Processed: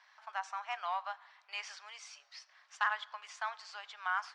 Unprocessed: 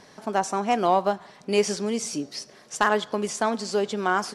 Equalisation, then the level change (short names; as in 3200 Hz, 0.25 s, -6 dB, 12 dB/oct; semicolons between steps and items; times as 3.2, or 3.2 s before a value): Bessel high-pass 1600 Hz, order 8; tape spacing loss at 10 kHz 34 dB; +1.0 dB